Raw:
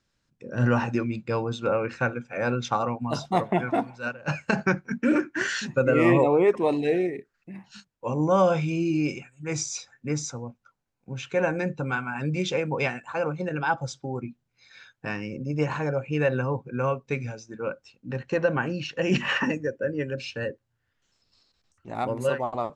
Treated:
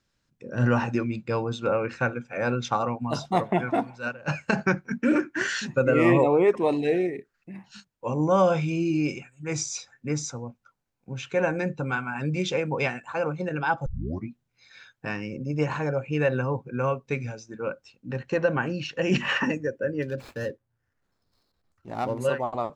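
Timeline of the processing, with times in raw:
13.86 tape start 0.41 s
20.02–22.18 median filter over 15 samples

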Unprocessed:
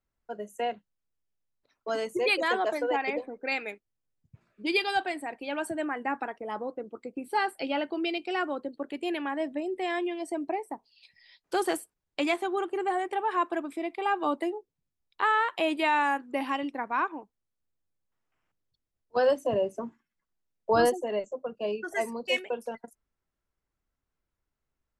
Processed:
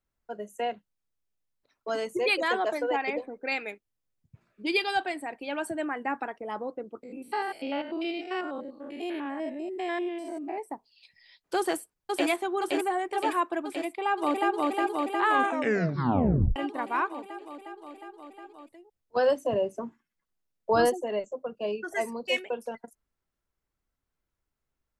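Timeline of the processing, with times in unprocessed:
7.03–10.58 stepped spectrum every 0.1 s
11.57–12.28 echo throw 0.52 s, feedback 70%, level -2.5 dB
13.87–14.57 echo throw 0.36 s, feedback 80%, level -0.5 dB
15.29 tape stop 1.27 s

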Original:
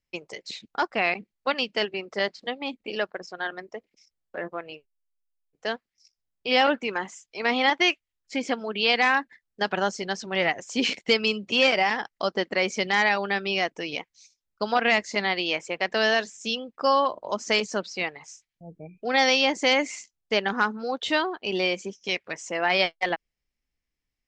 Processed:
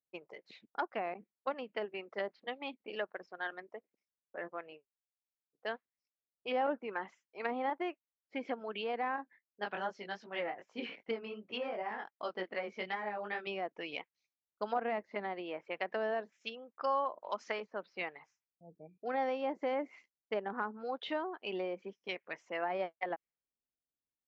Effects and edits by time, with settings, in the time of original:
9.16–13.47 chorus 2.6 Hz, delay 17.5 ms, depth 4.3 ms
16.32–17.83 tilt shelf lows -7 dB, about 770 Hz
whole clip: treble ducked by the level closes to 890 Hz, closed at -21.5 dBFS; HPF 370 Hz 6 dB/oct; low-pass opened by the level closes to 700 Hz, open at -24.5 dBFS; gain -7.5 dB

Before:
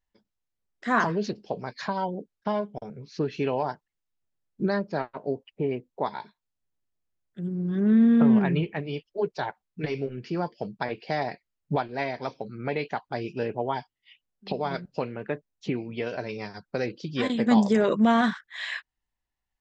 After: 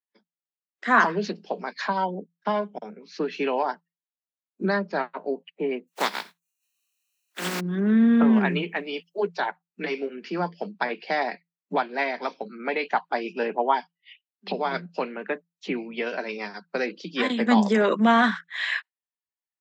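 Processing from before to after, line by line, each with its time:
5.87–7.59 spectral contrast lowered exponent 0.33
8.33–9.27 high shelf 5200 Hz +7 dB
12.91–13.76 dynamic EQ 900 Hz, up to +5 dB, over -40 dBFS, Q 1.2
whole clip: spectral noise reduction 18 dB; Chebyshev high-pass 170 Hz, order 10; bell 1900 Hz +7 dB 2.7 oct

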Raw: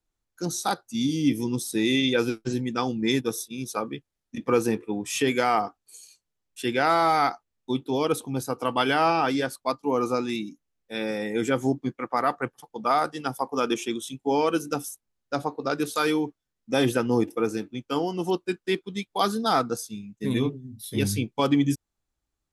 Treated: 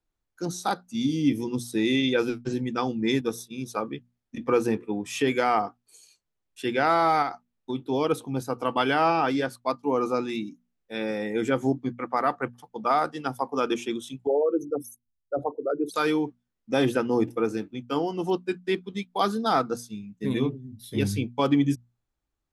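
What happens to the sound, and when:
7.22–7.8 compressor 2.5:1, threshold -25 dBFS
14.27–15.94 formant sharpening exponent 3
whole clip: high shelf 4800 Hz -9 dB; notches 60/120/180/240 Hz

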